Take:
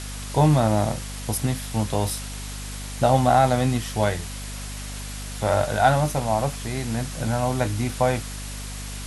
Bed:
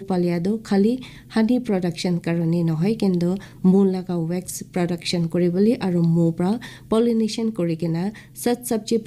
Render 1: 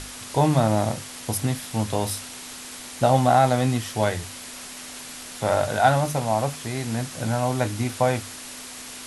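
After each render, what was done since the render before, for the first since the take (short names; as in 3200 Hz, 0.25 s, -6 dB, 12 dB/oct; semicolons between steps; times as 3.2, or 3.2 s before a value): notches 50/100/150/200 Hz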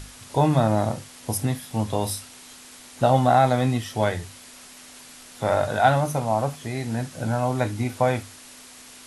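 noise print and reduce 7 dB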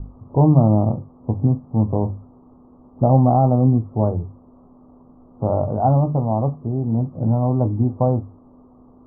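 Chebyshev low-pass 1200 Hz, order 6; tilt shelf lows +9.5 dB, about 710 Hz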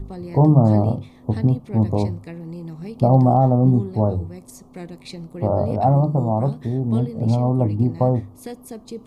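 add bed -13 dB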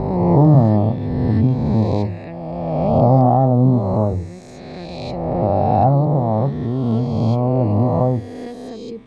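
spectral swells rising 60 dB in 2.13 s; air absorption 140 m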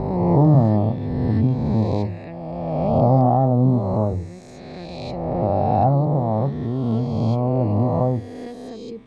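gain -3 dB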